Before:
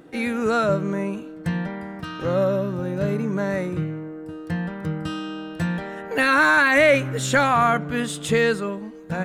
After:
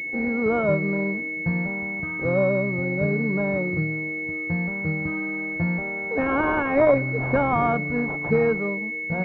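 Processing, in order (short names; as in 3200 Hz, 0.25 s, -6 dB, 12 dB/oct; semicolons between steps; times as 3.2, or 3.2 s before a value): pulse-width modulation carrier 2200 Hz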